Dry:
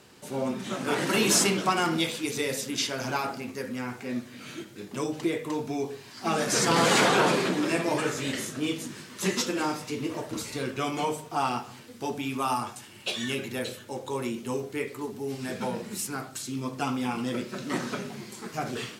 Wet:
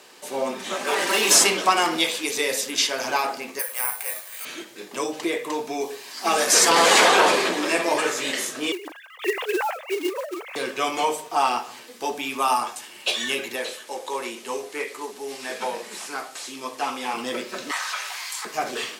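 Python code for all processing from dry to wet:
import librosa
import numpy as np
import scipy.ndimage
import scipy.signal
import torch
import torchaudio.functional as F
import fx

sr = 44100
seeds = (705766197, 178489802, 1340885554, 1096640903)

y = fx.chain(x, sr, fx.highpass(hz=240.0, slope=6),
    fx.clip_hard(threshold_db=-24.5),
    fx.comb(ms=5.1, depth=0.55), at=(0.75, 1.31))
y = fx.chain(y, sr, fx.highpass(hz=600.0, slope=24),
    fx.high_shelf(hz=8800.0, db=-8.5),
    fx.resample_bad(factor=4, down='none', up='zero_stuff'), at=(3.59, 4.45))
y = fx.chain(y, sr, fx.highpass(hz=130.0, slope=12),
    fx.high_shelf(hz=7200.0, db=7.0), at=(5.81, 6.7))
y = fx.chain(y, sr, fx.sine_speech(),
    fx.highpass(hz=260.0, slope=24),
    fx.quant_float(bits=2), at=(8.72, 10.56))
y = fx.chain(y, sr, fx.delta_mod(bps=64000, step_db=-46.0),
    fx.highpass(hz=48.0, slope=12),
    fx.low_shelf(hz=250.0, db=-10.0), at=(13.56, 17.14))
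y = fx.chain(y, sr, fx.highpass(hz=930.0, slope=24),
    fx.env_flatten(amount_pct=50), at=(17.71, 18.45))
y = scipy.signal.sosfilt(scipy.signal.butter(2, 470.0, 'highpass', fs=sr, output='sos'), y)
y = fx.notch(y, sr, hz=1400.0, q=12.0)
y = F.gain(torch.from_numpy(y), 7.5).numpy()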